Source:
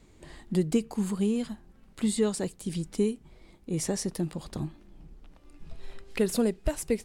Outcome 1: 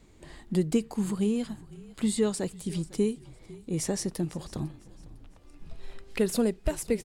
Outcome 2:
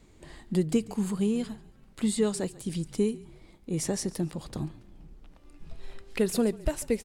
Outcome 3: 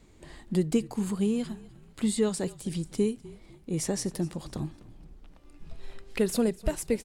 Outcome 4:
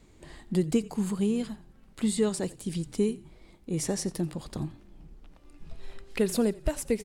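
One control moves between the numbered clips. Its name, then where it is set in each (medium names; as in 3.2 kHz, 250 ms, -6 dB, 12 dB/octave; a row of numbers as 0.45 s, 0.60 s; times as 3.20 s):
frequency-shifting echo, time: 502 ms, 141 ms, 250 ms, 87 ms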